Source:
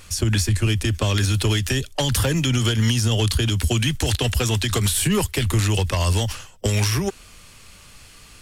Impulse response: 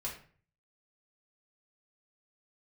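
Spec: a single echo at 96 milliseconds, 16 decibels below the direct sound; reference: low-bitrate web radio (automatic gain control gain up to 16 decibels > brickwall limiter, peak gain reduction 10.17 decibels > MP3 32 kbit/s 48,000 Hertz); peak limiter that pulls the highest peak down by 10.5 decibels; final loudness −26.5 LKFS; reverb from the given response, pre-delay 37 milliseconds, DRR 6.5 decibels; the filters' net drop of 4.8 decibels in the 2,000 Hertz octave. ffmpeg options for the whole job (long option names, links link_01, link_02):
-filter_complex "[0:a]equalizer=frequency=2000:width_type=o:gain=-6.5,alimiter=limit=-20.5dB:level=0:latency=1,aecho=1:1:96:0.158,asplit=2[link_01][link_02];[1:a]atrim=start_sample=2205,adelay=37[link_03];[link_02][link_03]afir=irnorm=-1:irlink=0,volume=-7.5dB[link_04];[link_01][link_04]amix=inputs=2:normalize=0,dynaudnorm=maxgain=16dB,alimiter=level_in=1.5dB:limit=-24dB:level=0:latency=1,volume=-1.5dB,volume=7.5dB" -ar 48000 -c:a libmp3lame -b:a 32k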